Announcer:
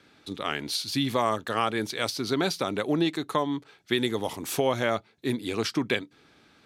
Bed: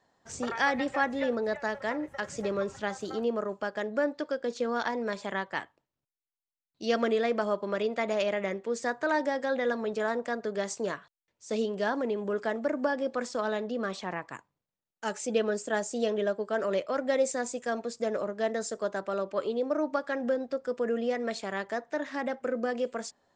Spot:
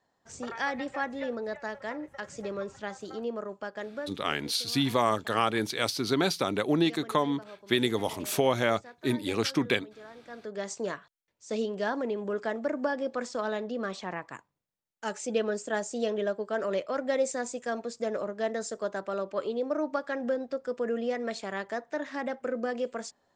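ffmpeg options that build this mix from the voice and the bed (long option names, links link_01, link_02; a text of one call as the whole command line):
ffmpeg -i stem1.wav -i stem2.wav -filter_complex "[0:a]adelay=3800,volume=0dB[link_01];[1:a]volume=13dB,afade=type=out:start_time=3.83:duration=0.35:silence=0.199526,afade=type=in:start_time=10.23:duration=0.53:silence=0.133352[link_02];[link_01][link_02]amix=inputs=2:normalize=0" out.wav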